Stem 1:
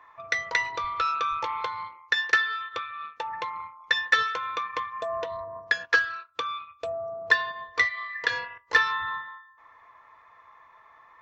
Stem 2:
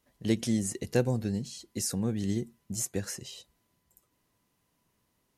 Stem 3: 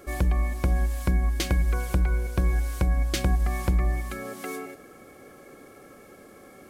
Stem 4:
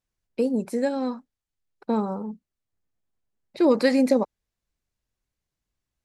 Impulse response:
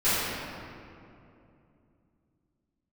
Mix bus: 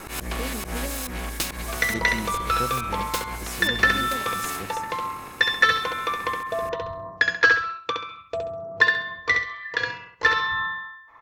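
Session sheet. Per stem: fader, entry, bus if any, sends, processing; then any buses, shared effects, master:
+1.0 dB, 1.50 s, no send, echo send −4.5 dB, low-shelf EQ 390 Hz +8.5 dB
−6.5 dB, 1.65 s, no send, no echo send, no processing
+1.0 dB, 0.00 s, no send, no echo send, lower of the sound and its delayed copy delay 0.76 ms; volume swells 125 ms; every bin compressed towards the loudest bin 2 to 1
−17.0 dB, 0.00 s, no send, no echo send, no processing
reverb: not used
echo: repeating echo 67 ms, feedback 31%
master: speech leveller within 5 dB 2 s

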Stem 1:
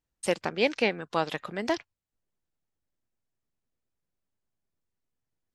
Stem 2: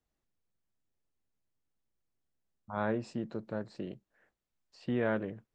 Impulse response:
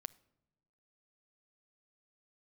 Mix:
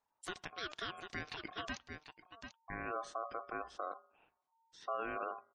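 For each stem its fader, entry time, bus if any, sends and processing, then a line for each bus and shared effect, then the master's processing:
−5.5 dB, 0.00 s, send −7.5 dB, echo send −11 dB, parametric band 360 Hz −14 dB 0.96 octaves; square-wave tremolo 3.8 Hz, depth 65%, duty 80%
0.0 dB, 0.00 s, send −5.5 dB, no echo send, hum removal 169.7 Hz, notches 8; brickwall limiter −26 dBFS, peak gain reduction 7.5 dB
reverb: on, pre-delay 7 ms
echo: single-tap delay 741 ms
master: gate on every frequency bin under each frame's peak −25 dB strong; ring modulation 910 Hz; brickwall limiter −29 dBFS, peak gain reduction 10 dB

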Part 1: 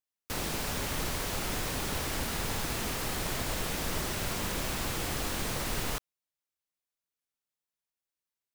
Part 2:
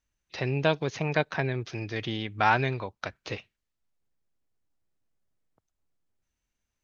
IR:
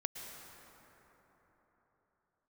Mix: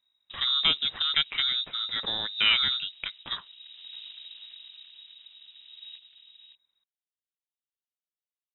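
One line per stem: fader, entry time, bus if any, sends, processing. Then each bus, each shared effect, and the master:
−1.5 dB, 0.00 s, no send, echo send −14.5 dB, brickwall limiter −24 dBFS, peak gain reduction 4 dB; transistor ladder low-pass 1,100 Hz, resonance 40%; wave folding −38.5 dBFS; automatic ducking −14 dB, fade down 1.60 s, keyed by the second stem
−0.5 dB, 0.00 s, no send, no echo send, no processing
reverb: not used
echo: single-tap delay 568 ms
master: low-shelf EQ 110 Hz +7 dB; voice inversion scrambler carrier 3,800 Hz

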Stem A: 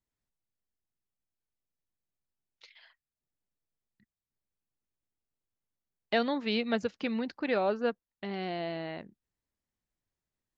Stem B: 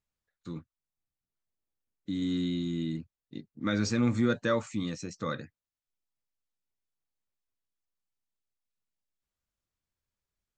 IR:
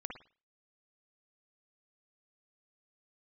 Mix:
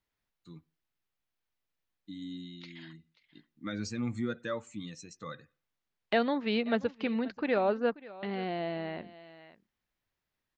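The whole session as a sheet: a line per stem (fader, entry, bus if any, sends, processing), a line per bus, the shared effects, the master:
+1.0 dB, 0.00 s, no send, echo send −20 dB, Bessel low-pass filter 3,100 Hz, order 2
−7.0 dB, 0.00 s, send −17 dB, no echo send, spectral dynamics exaggerated over time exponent 1.5; automatic ducking −10 dB, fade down 0.70 s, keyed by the first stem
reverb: on, pre-delay 51 ms
echo: single-tap delay 534 ms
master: one half of a high-frequency compander encoder only

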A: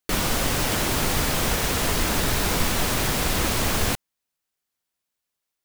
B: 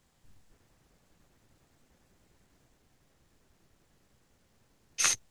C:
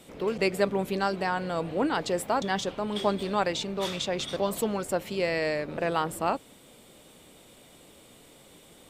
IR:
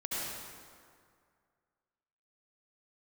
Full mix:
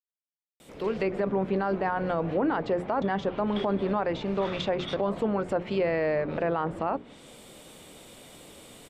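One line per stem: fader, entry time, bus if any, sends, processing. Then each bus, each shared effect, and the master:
−15.0 dB, 0.75 s, muted 0:02.34–0:03.47, bus A, no send, no processing
muted
−0.5 dB, 0.60 s, no bus, no send, mains-hum notches 60/120/180/240/300/360/420 Hz; automatic gain control gain up to 5.5 dB
bus A: 0.0 dB, brickwall limiter −39 dBFS, peak gain reduction 14 dB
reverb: not used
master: treble cut that deepens with the level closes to 1,600 Hz, closed at −21.5 dBFS; brickwall limiter −18 dBFS, peak gain reduction 10 dB

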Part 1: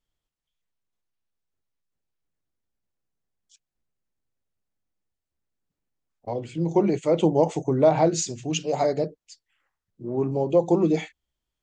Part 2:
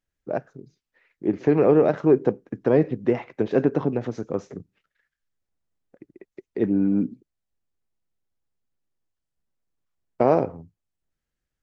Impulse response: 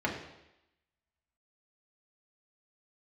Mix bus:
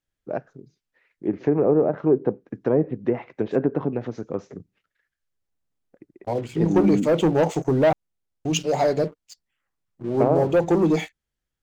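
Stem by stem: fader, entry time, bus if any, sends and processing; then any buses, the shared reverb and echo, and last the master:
−3.5 dB, 0.00 s, muted 0:07.93–0:08.45, no send, leveller curve on the samples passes 2
−1.5 dB, 0.00 s, no send, treble cut that deepens with the level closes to 1,000 Hz, closed at −14 dBFS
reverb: not used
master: no processing

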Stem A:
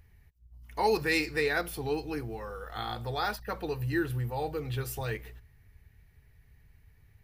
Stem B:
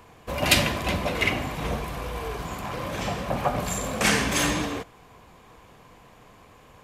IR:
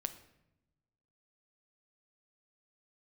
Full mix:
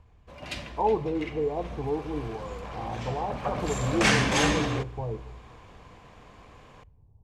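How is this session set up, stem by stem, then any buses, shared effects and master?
−0.5 dB, 0.00 s, send −5.5 dB, Chebyshev low-pass filter 1,100 Hz, order 8
0:01.33 −18.5 dB → 0:02.12 −10 dB → 0:03.30 −10 dB → 0:03.94 −1.5 dB, 0.00 s, send −12.5 dB, no processing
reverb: on, RT60 0.90 s, pre-delay 7 ms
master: low-pass filter 6,400 Hz 12 dB per octave

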